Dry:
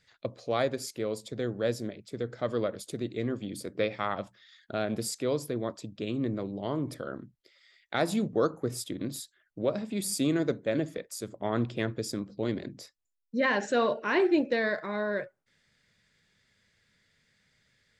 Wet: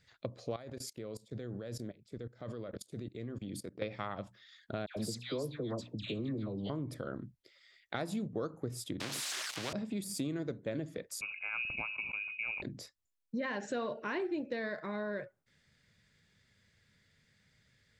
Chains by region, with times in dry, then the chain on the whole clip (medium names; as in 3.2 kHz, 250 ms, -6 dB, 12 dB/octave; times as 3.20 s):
0.56–3.82 s: high-pass 52 Hz 6 dB/octave + level held to a coarse grid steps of 21 dB
4.86–6.70 s: peaking EQ 4 kHz +6.5 dB 0.81 oct + hum notches 60/120/180/240/300 Hz + phase dispersion lows, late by 105 ms, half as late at 1.4 kHz
9.00–9.73 s: zero-crossing glitches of -31 dBFS + band-pass 260–3500 Hz + spectrum-flattening compressor 4:1
11.21–12.62 s: frequency inversion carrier 2.7 kHz + Butterworth band-stop 1.9 kHz, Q 3 + decay stretcher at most 70 dB/s
whole clip: de-esser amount 60%; peaking EQ 89 Hz +7 dB 2.4 oct; compression 4:1, threshold -33 dBFS; trim -2 dB